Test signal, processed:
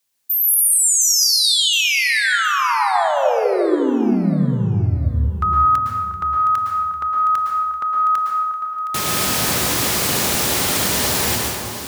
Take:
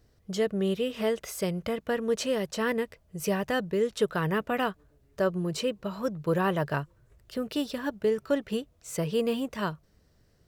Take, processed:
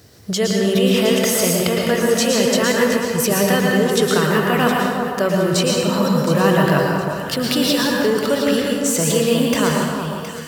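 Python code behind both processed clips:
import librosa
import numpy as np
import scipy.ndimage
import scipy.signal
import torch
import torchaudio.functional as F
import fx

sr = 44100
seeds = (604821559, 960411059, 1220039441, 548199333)

p1 = scipy.signal.sosfilt(scipy.signal.butter(4, 80.0, 'highpass', fs=sr, output='sos'), x)
p2 = fx.high_shelf(p1, sr, hz=2700.0, db=7.5)
p3 = fx.over_compress(p2, sr, threshold_db=-37.0, ratio=-1.0)
p4 = p2 + F.gain(torch.from_numpy(p3), 1.5).numpy()
p5 = fx.echo_alternate(p4, sr, ms=358, hz=1400.0, feedback_pct=55, wet_db=-6.0)
p6 = fx.rev_plate(p5, sr, seeds[0], rt60_s=1.1, hf_ratio=0.8, predelay_ms=100, drr_db=-0.5)
y = F.gain(torch.from_numpy(p6), 5.0).numpy()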